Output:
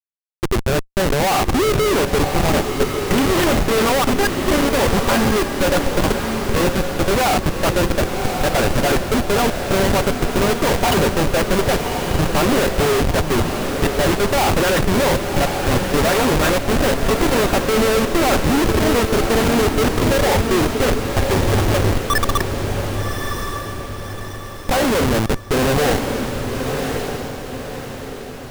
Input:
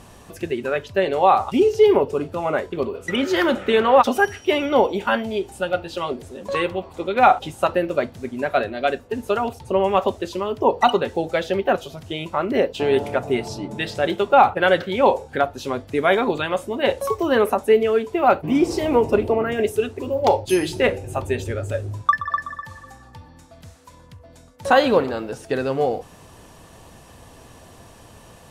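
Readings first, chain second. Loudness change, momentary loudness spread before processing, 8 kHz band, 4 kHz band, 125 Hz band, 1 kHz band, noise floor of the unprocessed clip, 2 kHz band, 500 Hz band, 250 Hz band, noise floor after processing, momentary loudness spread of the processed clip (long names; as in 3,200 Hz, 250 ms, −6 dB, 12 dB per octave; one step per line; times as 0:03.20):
+2.5 dB, 11 LU, +15.5 dB, +8.0 dB, +12.5 dB, 0.0 dB, −47 dBFS, +4.5 dB, +1.0 dB, +5.5 dB, −31 dBFS, 8 LU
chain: all-pass dispersion highs, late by 42 ms, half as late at 1,600 Hz
amplitude tremolo 0.55 Hz, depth 59%
comparator with hysteresis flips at −26 dBFS
on a send: feedback delay with all-pass diffusion 1,122 ms, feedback 46%, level −5 dB
on the sum: level +7 dB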